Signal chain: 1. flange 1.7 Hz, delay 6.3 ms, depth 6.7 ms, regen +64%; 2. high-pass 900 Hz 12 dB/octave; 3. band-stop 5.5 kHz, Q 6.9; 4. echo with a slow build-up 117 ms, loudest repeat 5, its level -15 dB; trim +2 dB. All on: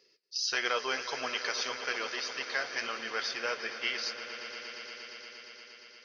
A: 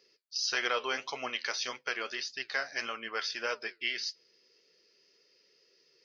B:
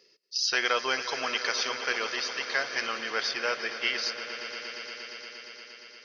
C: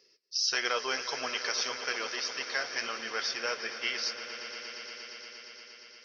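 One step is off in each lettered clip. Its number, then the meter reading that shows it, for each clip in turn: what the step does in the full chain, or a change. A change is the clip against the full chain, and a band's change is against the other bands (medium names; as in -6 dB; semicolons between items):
4, momentary loudness spread change -8 LU; 1, loudness change +4.5 LU; 3, 8 kHz band +3.5 dB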